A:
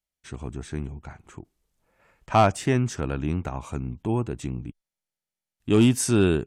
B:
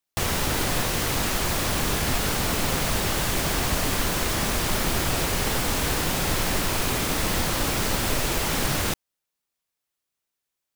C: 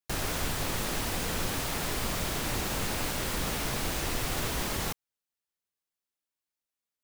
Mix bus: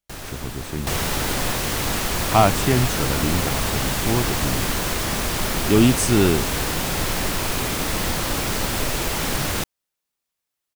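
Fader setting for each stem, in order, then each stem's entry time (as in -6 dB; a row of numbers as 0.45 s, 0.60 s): +2.5 dB, +1.0 dB, -3.0 dB; 0.00 s, 0.70 s, 0.00 s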